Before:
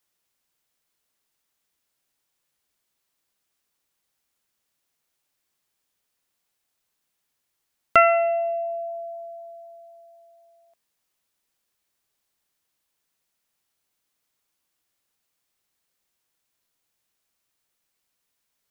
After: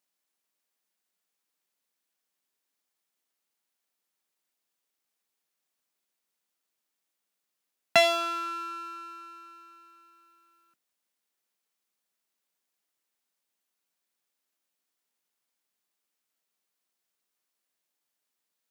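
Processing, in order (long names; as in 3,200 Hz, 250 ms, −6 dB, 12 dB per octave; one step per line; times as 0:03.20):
sub-octave generator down 1 octave, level −1 dB
full-wave rectification
high-pass filter 170 Hz 24 dB per octave
level −1.5 dB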